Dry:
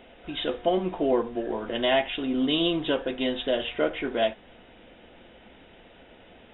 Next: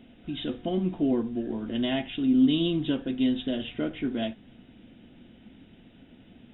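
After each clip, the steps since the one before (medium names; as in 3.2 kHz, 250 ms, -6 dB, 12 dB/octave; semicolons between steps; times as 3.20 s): graphic EQ 125/250/500/1000/2000 Hz +9/+10/-8/-7/-4 dB; trim -3.5 dB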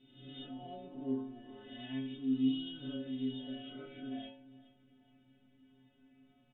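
reverse spectral sustain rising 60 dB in 1.00 s; inharmonic resonator 130 Hz, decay 0.66 s, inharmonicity 0.008; feedback delay 424 ms, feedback 41%, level -21 dB; trim -3 dB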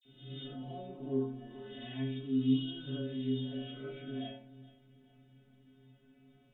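phase dispersion lows, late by 52 ms, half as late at 2.2 kHz; on a send at -2 dB: reverberation RT60 0.65 s, pre-delay 3 ms; on the sum: trim +1.5 dB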